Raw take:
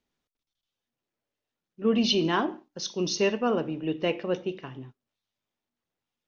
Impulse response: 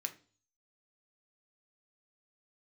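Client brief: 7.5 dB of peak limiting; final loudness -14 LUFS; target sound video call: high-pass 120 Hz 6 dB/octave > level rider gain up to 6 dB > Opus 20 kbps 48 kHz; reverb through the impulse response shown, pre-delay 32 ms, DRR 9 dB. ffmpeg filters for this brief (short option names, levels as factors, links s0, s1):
-filter_complex "[0:a]alimiter=limit=0.119:level=0:latency=1,asplit=2[s0][s1];[1:a]atrim=start_sample=2205,adelay=32[s2];[s1][s2]afir=irnorm=-1:irlink=0,volume=0.376[s3];[s0][s3]amix=inputs=2:normalize=0,highpass=f=120:p=1,dynaudnorm=m=2,volume=6.68" -ar 48000 -c:a libopus -b:a 20k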